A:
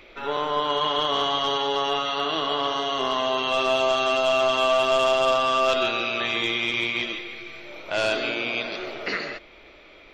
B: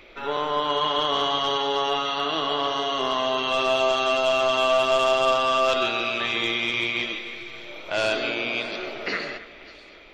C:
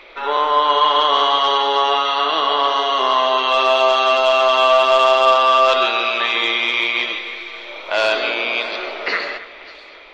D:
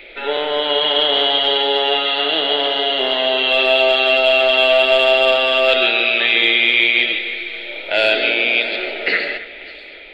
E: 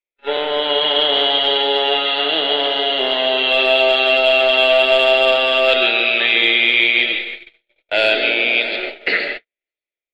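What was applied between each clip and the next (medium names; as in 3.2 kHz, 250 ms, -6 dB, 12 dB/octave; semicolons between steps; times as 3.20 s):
two-band feedback delay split 3 kHz, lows 270 ms, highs 589 ms, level -16 dB
graphic EQ 125/500/1000/2000/4000 Hz -11/+6/+11/+6/+8 dB; trim -2 dB
static phaser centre 2.6 kHz, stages 4; trim +5.5 dB
gate -23 dBFS, range -57 dB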